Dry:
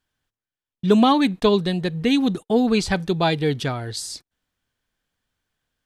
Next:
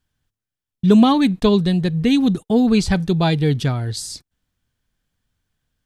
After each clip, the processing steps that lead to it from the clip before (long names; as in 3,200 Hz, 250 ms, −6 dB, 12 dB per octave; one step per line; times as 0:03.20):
bass and treble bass +10 dB, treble +3 dB
level −1 dB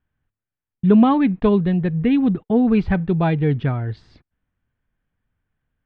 low-pass filter 2,400 Hz 24 dB per octave
level −1 dB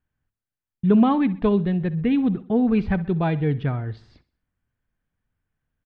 repeating echo 64 ms, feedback 44%, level −18 dB
level −3.5 dB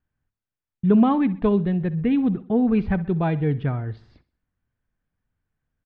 low-pass filter 2,800 Hz 6 dB per octave